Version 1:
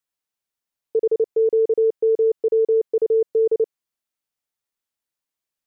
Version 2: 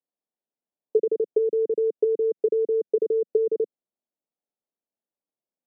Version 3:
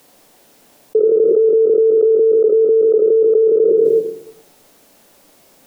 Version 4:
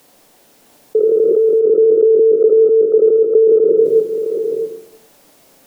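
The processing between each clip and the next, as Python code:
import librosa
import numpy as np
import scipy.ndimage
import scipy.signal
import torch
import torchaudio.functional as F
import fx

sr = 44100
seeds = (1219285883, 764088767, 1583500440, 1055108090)

y1 = fx.env_lowpass_down(x, sr, base_hz=310.0, full_db=-16.5)
y1 = scipy.signal.sosfilt(scipy.signal.cheby1(2, 1.0, [200.0, 670.0], 'bandpass', fs=sr, output='sos'), y1)
y1 = y1 * 10.0 ** (2.5 / 20.0)
y2 = fx.room_shoebox(y1, sr, seeds[0], volume_m3=110.0, walls='mixed', distance_m=0.33)
y2 = fx.env_flatten(y2, sr, amount_pct=100)
y2 = y2 * 10.0 ** (3.5 / 20.0)
y3 = y2 + 10.0 ** (-6.5 / 20.0) * np.pad(y2, (int(661 * sr / 1000.0), 0))[:len(y2)]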